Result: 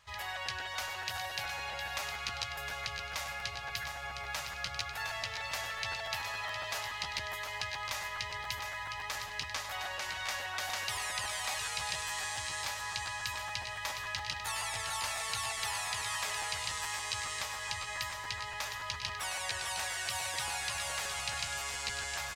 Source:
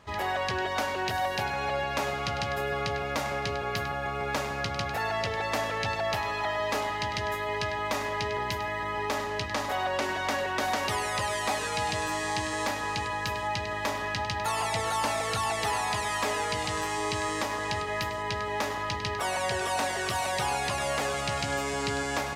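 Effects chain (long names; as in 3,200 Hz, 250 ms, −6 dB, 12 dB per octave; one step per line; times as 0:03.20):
guitar amp tone stack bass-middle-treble 10-0-10
on a send: single-tap delay 711 ms −7.5 dB
on the sum: regular buffer underruns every 0.14 s, samples 512, repeat, from 0:00.45
level −1 dB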